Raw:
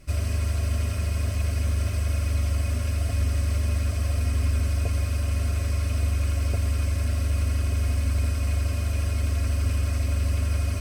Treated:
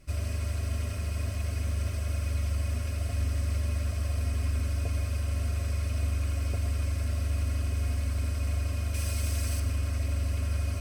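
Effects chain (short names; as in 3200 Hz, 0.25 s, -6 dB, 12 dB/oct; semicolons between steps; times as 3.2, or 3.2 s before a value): 8.94–9.6 high shelf 3500 Hz +11 dB; reverb RT60 0.55 s, pre-delay 70 ms, DRR 9.5 dB; gain -5.5 dB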